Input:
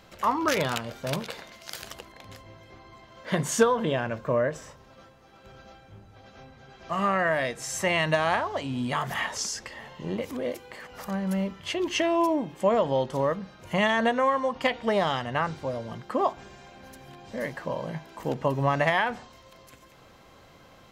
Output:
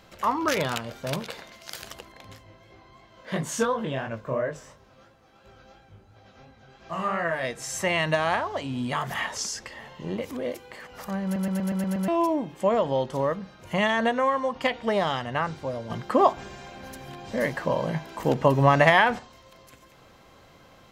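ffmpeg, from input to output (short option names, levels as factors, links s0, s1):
-filter_complex "[0:a]asplit=3[s0][s1][s2];[s0]afade=t=out:st=2.33:d=0.02[s3];[s1]flanger=delay=17.5:depth=5.7:speed=2.9,afade=t=in:st=2.33:d=0.02,afade=t=out:st=7.42:d=0.02[s4];[s2]afade=t=in:st=7.42:d=0.02[s5];[s3][s4][s5]amix=inputs=3:normalize=0,asplit=10[s6][s7][s8][s9][s10][s11][s12][s13][s14][s15];[s6]atrim=end=11.362[s16];[s7]atrim=start=11.238:end=11.362[s17];[s8]atrim=start=11.238:end=11.362[s18];[s9]atrim=start=11.238:end=11.362[s19];[s10]atrim=start=11.238:end=11.362[s20];[s11]atrim=start=11.238:end=11.362[s21];[s12]atrim=start=11.238:end=11.362[s22];[s13]atrim=start=12.078:end=15.902[s23];[s14]atrim=start=15.898:end=19.192,asetpts=PTS-STARTPTS,volume=2[s24];[s15]atrim=start=19.188[s25];[s16][s17]acrossfade=d=0.004:c1=hsin:c2=hsin[s26];[s26][s18]acrossfade=d=0.004:c1=hsin:c2=hsin[s27];[s27][s19]acrossfade=d=0.004:c1=hsin:c2=hsin[s28];[s28][s20]acrossfade=d=0.004:c1=hsin:c2=hsin[s29];[s29][s21]acrossfade=d=0.004:c1=hsin:c2=hsin[s30];[s30][s22]acrossfade=d=0.004:c1=hsin:c2=hsin[s31];[s31][s23]acrossfade=d=0.004:c1=hsin:c2=hsin[s32];[s32][s24]acrossfade=d=0.004:c1=hsin:c2=hsin[s33];[s33][s25]acrossfade=d=0.004:c1=hsin:c2=hsin"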